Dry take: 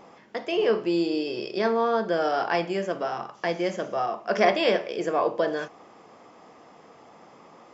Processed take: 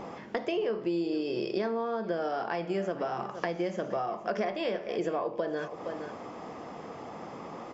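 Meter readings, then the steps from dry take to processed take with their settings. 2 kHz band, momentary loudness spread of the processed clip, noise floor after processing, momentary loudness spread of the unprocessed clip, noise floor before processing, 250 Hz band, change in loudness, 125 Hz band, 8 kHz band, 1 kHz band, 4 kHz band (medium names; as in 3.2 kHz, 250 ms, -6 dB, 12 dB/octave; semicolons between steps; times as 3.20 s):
-8.5 dB, 12 LU, -44 dBFS, 8 LU, -52 dBFS, -4.0 dB, -7.5 dB, -2.5 dB, no reading, -7.0 dB, -9.5 dB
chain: delay 467 ms -21 dB; compression 10:1, threshold -37 dBFS, peak gain reduction 21.5 dB; tilt EQ -1.5 dB/octave; trim +7.5 dB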